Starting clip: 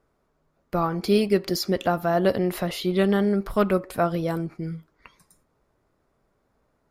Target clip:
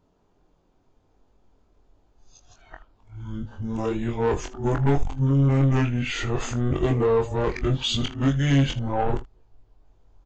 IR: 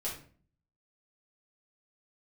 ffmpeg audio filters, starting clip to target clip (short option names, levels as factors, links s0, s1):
-af "areverse,asubboost=boost=10.5:cutoff=86,asetrate=29679,aresample=44100,aresample=16000,asoftclip=type=tanh:threshold=0.106,aresample=44100,aecho=1:1:22|42|79:0.631|0.141|0.133,volume=1.33"